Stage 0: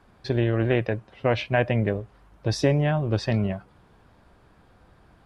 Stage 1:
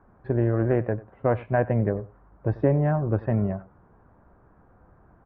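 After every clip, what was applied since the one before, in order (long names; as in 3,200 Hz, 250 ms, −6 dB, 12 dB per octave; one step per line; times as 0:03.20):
low-pass filter 1,500 Hz 24 dB per octave
single-tap delay 94 ms −19.5 dB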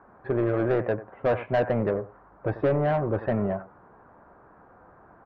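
mid-hump overdrive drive 21 dB, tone 2,200 Hz, clips at −9 dBFS
high-frequency loss of the air 110 metres
level −4.5 dB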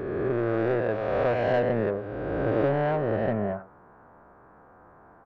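peak hold with a rise ahead of every peak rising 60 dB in 2.18 s
level −3.5 dB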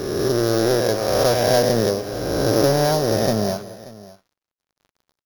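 samples sorted by size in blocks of 8 samples
dead-zone distortion −45.5 dBFS
multi-tap delay 188/583 ms −16.5/−19.5 dB
level +7.5 dB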